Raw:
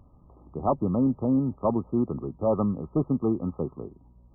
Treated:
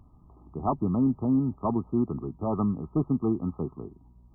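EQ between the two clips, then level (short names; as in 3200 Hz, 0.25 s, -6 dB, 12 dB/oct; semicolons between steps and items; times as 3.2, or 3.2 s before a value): bell 530 Hz -14 dB 0.32 oct; 0.0 dB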